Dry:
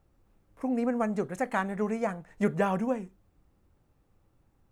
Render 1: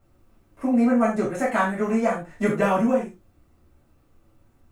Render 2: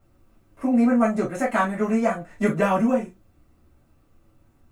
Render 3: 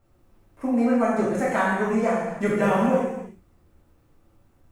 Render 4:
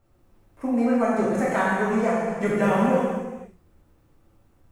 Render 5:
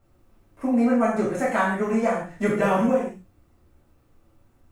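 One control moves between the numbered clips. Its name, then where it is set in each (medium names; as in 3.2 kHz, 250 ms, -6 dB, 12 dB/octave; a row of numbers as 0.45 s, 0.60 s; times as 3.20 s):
gated-style reverb, gate: 120 ms, 80 ms, 360 ms, 540 ms, 190 ms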